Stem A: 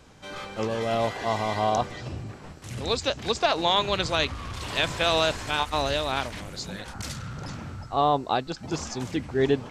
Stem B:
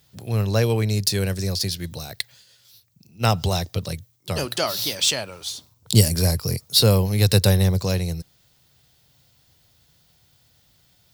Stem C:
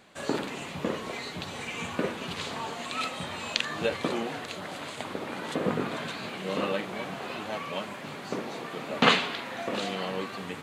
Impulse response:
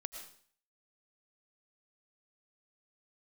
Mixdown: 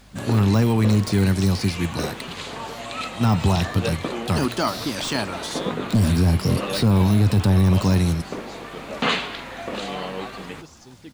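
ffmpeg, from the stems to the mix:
-filter_complex "[0:a]adelay=1900,volume=-17.5dB,asplit=2[a][b];[b]volume=-3dB[c];[1:a]acontrast=64,firequalizer=gain_entry='entry(140,0);entry(250,9);entry(510,-8);entry(900,6);entry(2200,-1);entry(9800,2);entry(15000,-13)':delay=0.05:min_phase=1,deesser=0.55,volume=-3dB,asplit=2[d][e];[e]volume=-12dB[f];[2:a]aeval=exprs='val(0)+0.00282*(sin(2*PI*50*n/s)+sin(2*PI*2*50*n/s)/2+sin(2*PI*3*50*n/s)/3+sin(2*PI*4*50*n/s)/4+sin(2*PI*5*50*n/s)/5)':c=same,volume=1.5dB[g];[3:a]atrim=start_sample=2205[h];[c][f]amix=inputs=2:normalize=0[i];[i][h]afir=irnorm=-1:irlink=0[j];[a][d][g][j]amix=inputs=4:normalize=0,alimiter=limit=-10.5dB:level=0:latency=1:release=11"

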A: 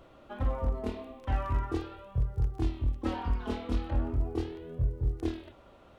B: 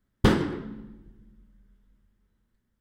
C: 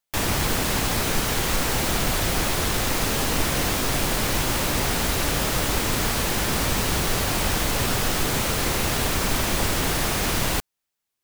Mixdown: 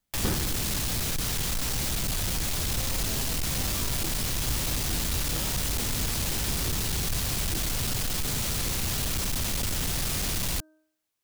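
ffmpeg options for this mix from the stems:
-filter_complex "[0:a]adelay=2300,volume=-9dB[a];[1:a]volume=-10.5dB[b];[2:a]bandreject=f=312.1:t=h:w=4,bandreject=f=624.2:t=h:w=4,bandreject=f=936.3:t=h:w=4,bandreject=f=1.2484k:t=h:w=4,bandreject=f=1.5605k:t=h:w=4,acrossover=split=200|3000[c][d][e];[d]acompressor=threshold=-37dB:ratio=4[f];[c][f][e]amix=inputs=3:normalize=0,asoftclip=type=hard:threshold=-25.5dB,volume=0dB[g];[a][b][g]amix=inputs=3:normalize=0"

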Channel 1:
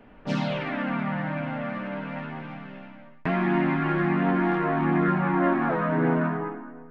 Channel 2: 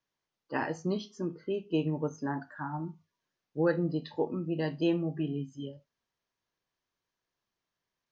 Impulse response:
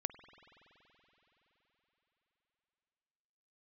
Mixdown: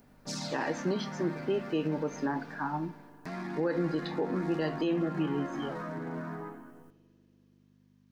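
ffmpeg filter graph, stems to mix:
-filter_complex "[0:a]alimiter=limit=-20dB:level=0:latency=1:release=28,aexciter=amount=7.9:drive=9.9:freq=4.6k,volume=-10.5dB,asplit=2[a][b];[b]volume=-23.5dB[c];[1:a]aeval=exprs='val(0)+0.00158*(sin(2*PI*50*n/s)+sin(2*PI*2*50*n/s)/2+sin(2*PI*3*50*n/s)/3+sin(2*PI*4*50*n/s)/4+sin(2*PI*5*50*n/s)/5)':c=same,highpass=200,volume=1dB,asplit=2[d][e];[e]volume=-6dB[f];[2:a]atrim=start_sample=2205[g];[f][g]afir=irnorm=-1:irlink=0[h];[c]aecho=0:1:213|426|639|852|1065:1|0.35|0.122|0.0429|0.015[i];[a][d][h][i]amix=inputs=4:normalize=0,alimiter=limit=-21dB:level=0:latency=1:release=73"

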